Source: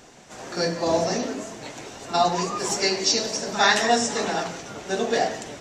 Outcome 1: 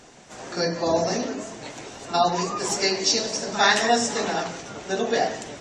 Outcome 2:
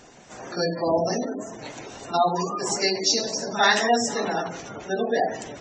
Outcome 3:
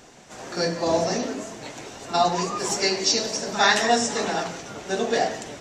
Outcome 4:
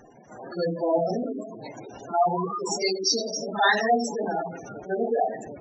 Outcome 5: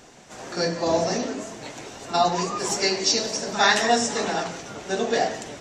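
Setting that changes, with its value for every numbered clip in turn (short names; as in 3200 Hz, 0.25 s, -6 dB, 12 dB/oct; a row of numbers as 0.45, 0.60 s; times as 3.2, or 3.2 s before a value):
spectral gate, under each frame's peak: -35, -20, -60, -10, -45 dB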